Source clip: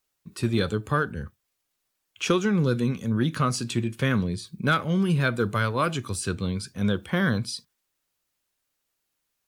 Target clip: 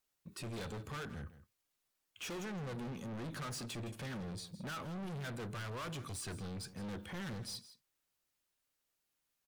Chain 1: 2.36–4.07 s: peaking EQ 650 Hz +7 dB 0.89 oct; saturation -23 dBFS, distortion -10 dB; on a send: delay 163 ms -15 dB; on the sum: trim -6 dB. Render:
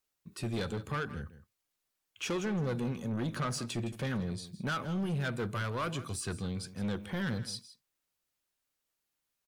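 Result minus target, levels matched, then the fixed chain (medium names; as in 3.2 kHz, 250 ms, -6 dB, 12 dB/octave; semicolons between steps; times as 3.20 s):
saturation: distortion -7 dB
2.36–4.07 s: peaking EQ 650 Hz +7 dB 0.89 oct; saturation -35 dBFS, distortion -3 dB; on a send: delay 163 ms -15 dB; on the sum: trim -6 dB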